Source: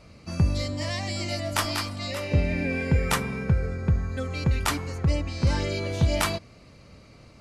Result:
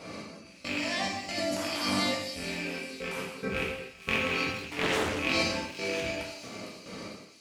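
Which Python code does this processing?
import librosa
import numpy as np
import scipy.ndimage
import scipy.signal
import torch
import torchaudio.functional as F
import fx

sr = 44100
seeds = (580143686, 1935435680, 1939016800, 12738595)

p1 = fx.rattle_buzz(x, sr, strikes_db=-29.0, level_db=-18.0)
p2 = scipy.signal.sosfilt(scipy.signal.butter(2, 300.0, 'highpass', fs=sr, output='sos'), p1)
p3 = fx.low_shelf(p2, sr, hz=450.0, db=6.0)
p4 = fx.over_compress(p3, sr, threshold_db=-37.0, ratio=-1.0)
p5 = fx.step_gate(p4, sr, bpm=70, pattern='x..xx.xxxx.xx.x.', floor_db=-24.0, edge_ms=4.5)
p6 = p5 + fx.echo_wet_highpass(p5, sr, ms=455, feedback_pct=50, hz=5100.0, wet_db=-5.5, dry=0)
p7 = fx.rev_gated(p6, sr, seeds[0], gate_ms=320, shape='falling', drr_db=-4.5)
y = fx.doppler_dist(p7, sr, depth_ms=0.58, at=(4.63, 5.19))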